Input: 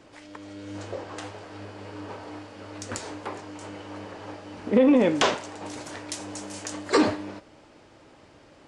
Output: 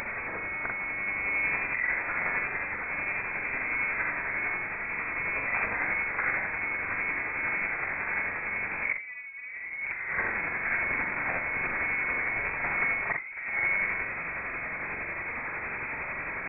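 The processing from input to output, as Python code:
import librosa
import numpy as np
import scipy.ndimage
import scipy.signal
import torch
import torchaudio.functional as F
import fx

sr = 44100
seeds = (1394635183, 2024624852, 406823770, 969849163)

y = fx.delta_mod(x, sr, bps=16000, step_db=-36.0)
y = fx.dynamic_eq(y, sr, hz=440.0, q=2.5, threshold_db=-37.0, ratio=4.0, max_db=4)
y = fx.over_compress(y, sr, threshold_db=-34.0, ratio=-1.0)
y = fx.stretch_grains(y, sr, factor=1.9, grain_ms=182.0)
y = fx.freq_invert(y, sr, carrier_hz=2500)
y = y * 10.0 ** (4.5 / 20.0)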